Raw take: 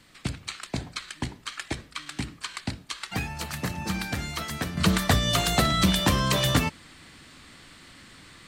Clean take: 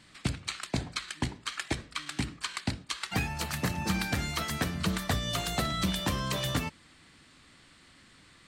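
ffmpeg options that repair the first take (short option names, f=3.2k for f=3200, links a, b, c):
-af "agate=range=-21dB:threshold=-42dB,asetnsamples=n=441:p=0,asendcmd='4.77 volume volume -8dB',volume=0dB"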